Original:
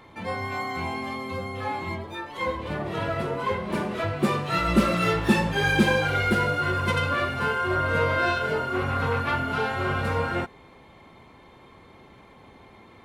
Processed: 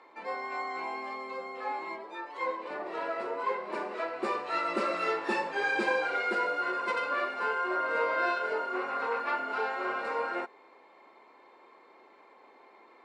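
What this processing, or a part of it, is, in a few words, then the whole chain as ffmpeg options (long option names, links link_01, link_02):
phone speaker on a table: -af "highpass=frequency=340:width=0.5412,highpass=frequency=340:width=1.3066,equalizer=frequency=970:width_type=q:width=4:gain=3,equalizer=frequency=3300:width_type=q:width=4:gain=-10,equalizer=frequency=6200:width_type=q:width=4:gain=-8,lowpass=frequency=7200:width=0.5412,lowpass=frequency=7200:width=1.3066,volume=-5dB"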